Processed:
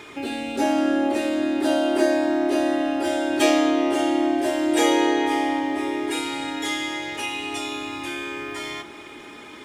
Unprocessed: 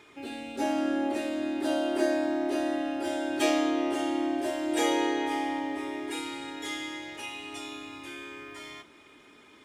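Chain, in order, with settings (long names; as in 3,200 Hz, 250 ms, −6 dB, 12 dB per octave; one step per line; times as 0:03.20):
in parallel at +3 dB: downward compressor, threshold −43 dBFS, peak gain reduction 20 dB
on the sum: bucket-brigade delay 272 ms, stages 4,096, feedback 83%, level −20.5 dB
level +5.5 dB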